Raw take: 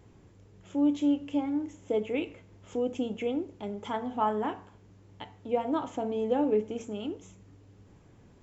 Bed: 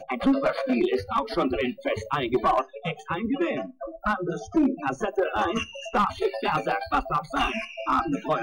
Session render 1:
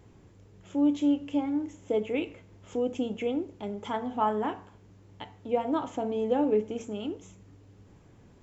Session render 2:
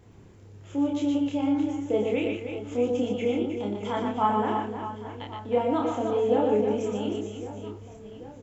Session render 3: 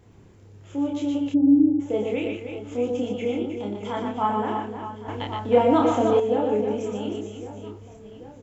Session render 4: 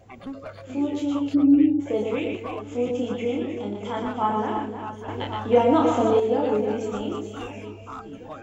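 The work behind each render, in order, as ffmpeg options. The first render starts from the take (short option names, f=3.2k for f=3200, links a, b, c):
-af "volume=1dB"
-filter_complex "[0:a]asplit=2[a][b];[b]adelay=29,volume=-2dB[c];[a][c]amix=inputs=2:normalize=0,aecho=1:1:120|312|619.2|1111|1897:0.631|0.398|0.251|0.158|0.1"
-filter_complex "[0:a]asplit=3[a][b][c];[a]afade=t=out:st=1.33:d=0.02[d];[b]lowpass=f=310:t=q:w=2.9,afade=t=in:st=1.33:d=0.02,afade=t=out:st=1.79:d=0.02[e];[c]afade=t=in:st=1.79:d=0.02[f];[d][e][f]amix=inputs=3:normalize=0,asettb=1/sr,asplit=3[g][h][i];[g]atrim=end=5.084[j];[h]atrim=start=5.08:end=6.2,asetpts=PTS-STARTPTS,afade=t=in:d=0.004:c=qsin,afade=t=out:st=1.116:d=0.004:c=qsin,acontrast=90[k];[i]atrim=start=6.196[l];[j][k]acrossfade=d=0.004:c1=hsin:c2=qsin[m];[m][l]acrossfade=d=0.004:c1=qsin:c2=hsin"
-filter_complex "[1:a]volume=-14.5dB[a];[0:a][a]amix=inputs=2:normalize=0"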